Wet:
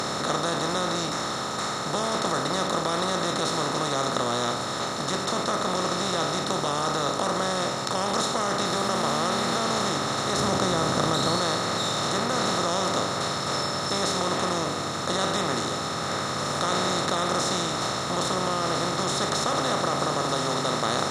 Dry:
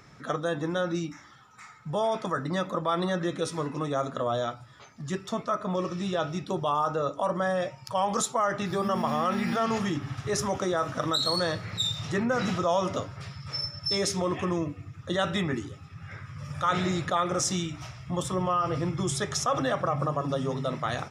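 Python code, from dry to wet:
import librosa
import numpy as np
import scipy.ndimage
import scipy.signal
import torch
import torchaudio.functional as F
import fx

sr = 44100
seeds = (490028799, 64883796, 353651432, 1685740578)

y = fx.bin_compress(x, sr, power=0.2)
y = fx.low_shelf(y, sr, hz=260.0, db=7.5, at=(10.37, 11.37))
y = F.gain(torch.from_numpy(y), -8.5).numpy()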